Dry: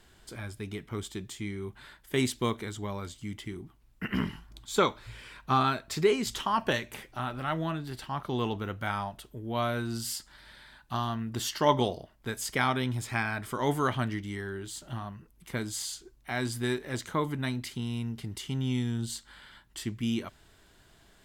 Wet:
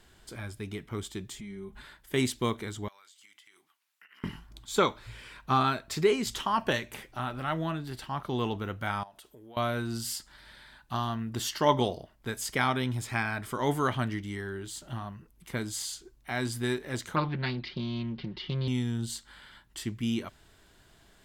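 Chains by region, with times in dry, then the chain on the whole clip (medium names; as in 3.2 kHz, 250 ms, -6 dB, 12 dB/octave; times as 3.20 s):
1.33–1.82 s: bass shelf 140 Hz +9.5 dB + compression 3:1, threshold -43 dBFS + comb 4.8 ms, depth 79%
2.88–4.24 s: high-pass 1.4 kHz + compression 10:1, threshold -53 dBFS
9.03–9.57 s: tone controls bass -14 dB, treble +3 dB + compression 4:1, threshold -48 dBFS
17.16–18.68 s: steep low-pass 4.7 kHz 48 dB/octave + comb 5.5 ms, depth 81% + loudspeaker Doppler distortion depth 0.34 ms
whole clip: none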